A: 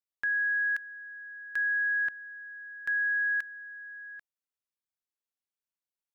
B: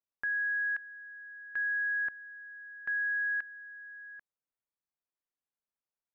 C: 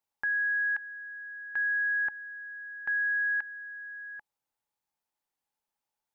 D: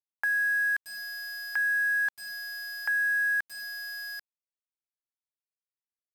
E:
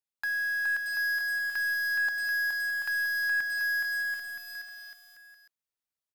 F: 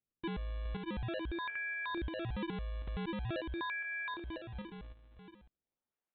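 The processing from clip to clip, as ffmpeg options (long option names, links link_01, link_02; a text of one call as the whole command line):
ffmpeg -i in.wav -af "lowpass=1600" out.wav
ffmpeg -i in.wav -filter_complex "[0:a]equalizer=frequency=850:width=5.7:gain=13,asplit=2[link_01][link_02];[link_02]alimiter=level_in=10.5dB:limit=-24dB:level=0:latency=1:release=73,volume=-10.5dB,volume=-2dB[link_03];[link_01][link_03]amix=inputs=2:normalize=0" out.wav
ffmpeg -i in.wav -filter_complex "[0:a]highpass=frequency=480:width=0.5412,highpass=frequency=480:width=1.3066,asplit=2[link_01][link_02];[link_02]acompressor=threshold=-39dB:ratio=6,volume=-0.5dB[link_03];[link_01][link_03]amix=inputs=2:normalize=0,aeval=exprs='val(0)*gte(abs(val(0)),0.0168)':channel_layout=same" out.wav
ffmpeg -i in.wav -filter_complex "[0:a]bandreject=frequency=360:width=12,aeval=exprs='(tanh(22.4*val(0)+0.05)-tanh(0.05))/22.4':channel_layout=same,asplit=2[link_01][link_02];[link_02]aecho=0:1:420|735|971.2|1148|1281:0.631|0.398|0.251|0.158|0.1[link_03];[link_01][link_03]amix=inputs=2:normalize=0" out.wav
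ffmpeg -i in.wav -af "aderivative,aresample=8000,acrusher=samples=8:mix=1:aa=0.000001:lfo=1:lforange=12.8:lforate=0.45,aresample=44100,acompressor=threshold=-51dB:ratio=3,volume=11.5dB" out.wav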